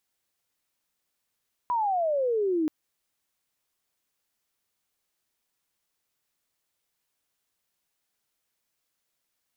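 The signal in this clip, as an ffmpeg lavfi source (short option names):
-f lavfi -i "aevalsrc='pow(10,(-23+0.5*t/0.98)/20)*sin(2*PI*1000*0.98/log(300/1000)*(exp(log(300/1000)*t/0.98)-1))':d=0.98:s=44100"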